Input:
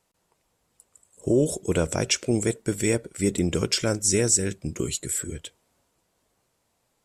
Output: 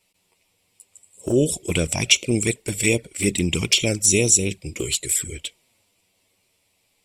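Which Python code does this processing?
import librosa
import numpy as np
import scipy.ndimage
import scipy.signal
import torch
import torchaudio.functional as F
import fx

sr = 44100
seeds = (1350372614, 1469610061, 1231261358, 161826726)

y = fx.high_shelf_res(x, sr, hz=1900.0, db=6.5, q=3.0)
y = fx.notch(y, sr, hz=6500.0, q=8.1)
y = fx.env_flanger(y, sr, rest_ms=10.8, full_db=-16.0)
y = y * librosa.db_to_amplitude(3.5)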